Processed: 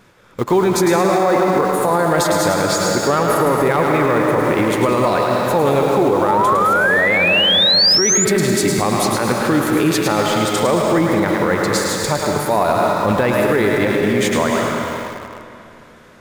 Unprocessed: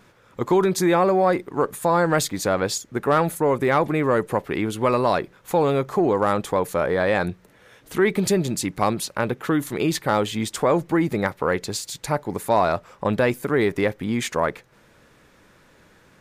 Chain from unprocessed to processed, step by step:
feedback echo with a high-pass in the loop 107 ms, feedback 42%, high-pass 590 Hz, level −5 dB
comb and all-pass reverb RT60 3 s, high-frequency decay 0.8×, pre-delay 110 ms, DRR 1.5 dB
in parallel at −10 dB: bit reduction 5 bits
on the sum: sound drawn into the spectrogram rise, 0:06.28–0:08.25, 840–7,200 Hz −14 dBFS
boost into a limiter +9 dB
level −5.5 dB

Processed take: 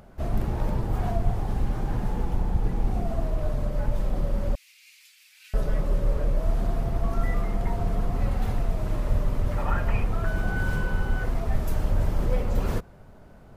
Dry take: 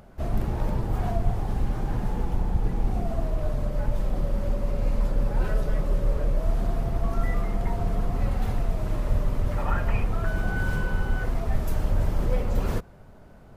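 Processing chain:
0:04.55–0:05.54: Chebyshev high-pass filter 2,300 Hz, order 4

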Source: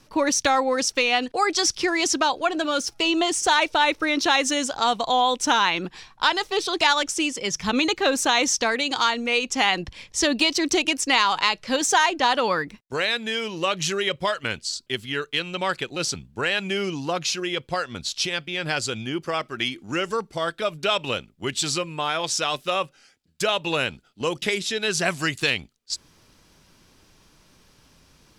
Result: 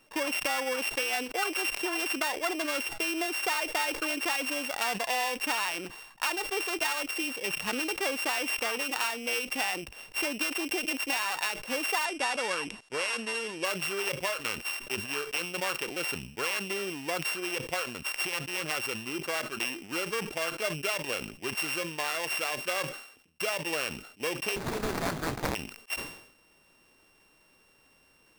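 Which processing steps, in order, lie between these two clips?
samples sorted by size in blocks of 16 samples
0:12.05–0:13.65: Butterworth low-pass 11,000 Hz 96 dB per octave
downward compressor 4 to 1, threshold −23 dBFS, peak gain reduction 8.5 dB
bass and treble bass −13 dB, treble −2 dB
0:24.56–0:25.55: sample-rate reduction 3,000 Hz, jitter 20%
level that may fall only so fast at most 80 dB per second
level −3.5 dB

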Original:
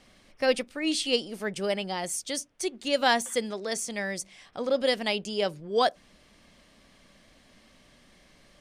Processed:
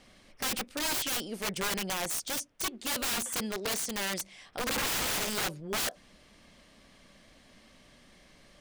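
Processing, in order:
0:04.62–0:05.29: flutter between parallel walls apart 12 metres, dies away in 0.98 s
wrap-around overflow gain 26 dB

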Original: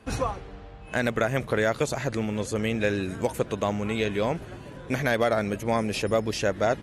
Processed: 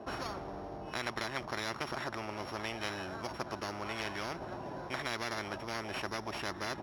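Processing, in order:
samples sorted by size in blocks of 8 samples
pair of resonant band-passes 480 Hz, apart 0.83 octaves
every bin compressed towards the loudest bin 10 to 1
level −1 dB

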